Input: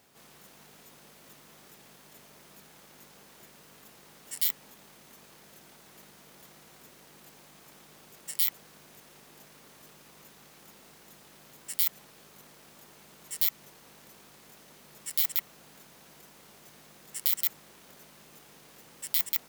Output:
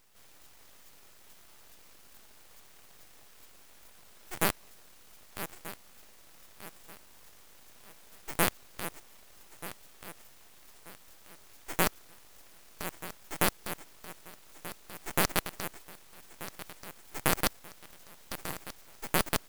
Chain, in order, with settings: regenerating reverse delay 0.617 s, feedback 61%, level -11 dB; full-wave rectifier

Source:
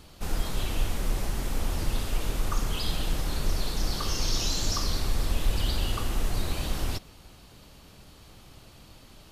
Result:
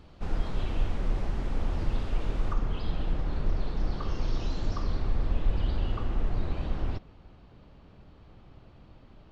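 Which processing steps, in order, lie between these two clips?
tape spacing loss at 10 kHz 27 dB, from 2.52 s at 10 kHz 39 dB

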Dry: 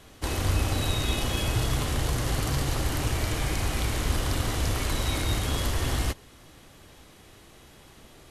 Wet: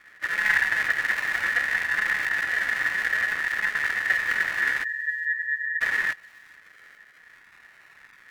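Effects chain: bell 81 Hz +9.5 dB 0.72 oct; decimation with a swept rate 40×, swing 60% 0.61 Hz; ring modulator 1800 Hz; 4.84–5.81 loudest bins only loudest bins 4; thin delay 0.418 s, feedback 45%, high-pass 3200 Hz, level -20.5 dB; Doppler distortion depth 0.21 ms

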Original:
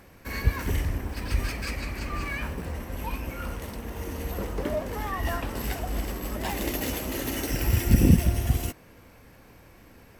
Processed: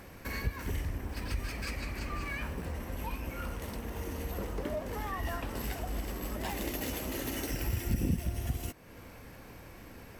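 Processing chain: compressor 2:1, threshold -42 dBFS, peak gain reduction 16.5 dB; gain +2.5 dB

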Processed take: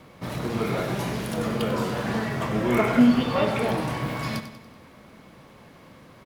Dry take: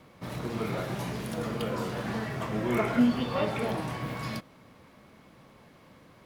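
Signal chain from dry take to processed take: feedback echo 95 ms, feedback 50%, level -11 dB; gain +5.5 dB

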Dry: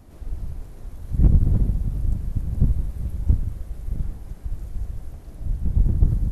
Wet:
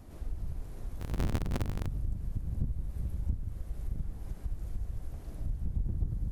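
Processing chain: 1–1.87 cycle switcher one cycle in 2, inverted; compressor 3:1, threshold -29 dBFS, peak gain reduction 14.5 dB; gain -2.5 dB

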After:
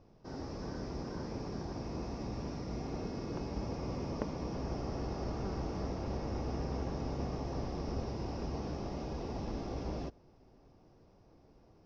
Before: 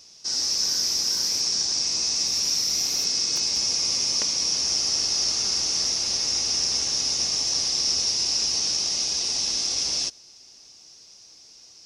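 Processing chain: LPF 1000 Hz 12 dB/oct; tilt -2.5 dB/oct; gain +1 dB

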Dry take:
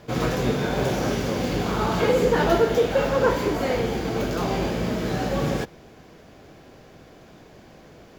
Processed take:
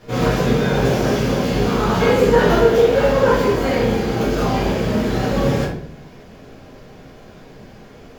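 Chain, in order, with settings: shoebox room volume 82 m³, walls mixed, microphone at 1.8 m; gain -3 dB

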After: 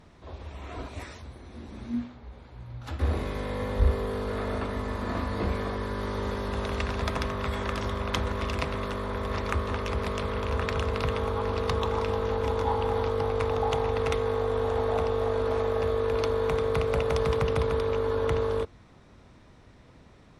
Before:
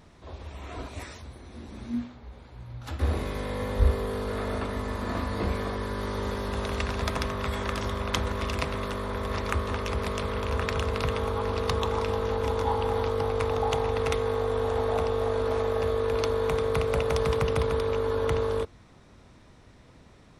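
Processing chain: high shelf 6300 Hz -7 dB; in parallel at -6 dB: one-sided clip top -22 dBFS; on the sum: gain -3.5 dB

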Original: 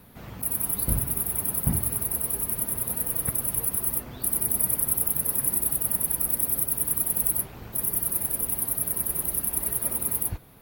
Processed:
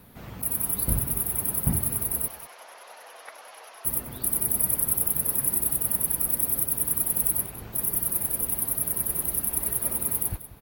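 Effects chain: 2.28–3.85 Chebyshev band-pass 630–6300 Hz, order 3; echo 0.189 s -15.5 dB

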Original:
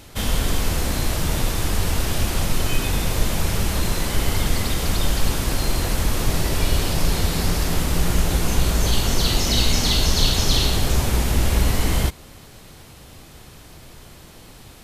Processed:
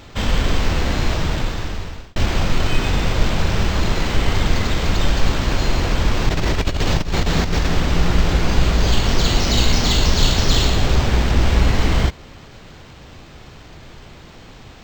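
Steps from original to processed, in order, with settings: 1.11–2.16 fade out; 6.29–7.67 negative-ratio compressor -20 dBFS, ratio -0.5; decimation joined by straight lines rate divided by 4×; gain +3.5 dB

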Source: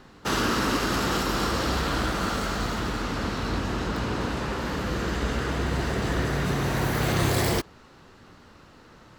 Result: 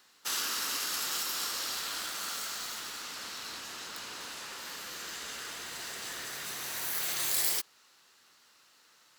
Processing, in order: differentiator; gain +2.5 dB

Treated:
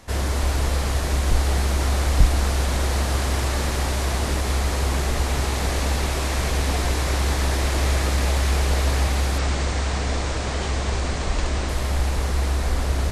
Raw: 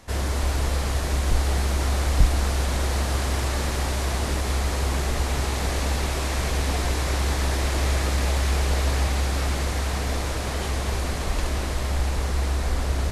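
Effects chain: 9.38–11.69 steep low-pass 8700 Hz 48 dB/oct; gain +2 dB

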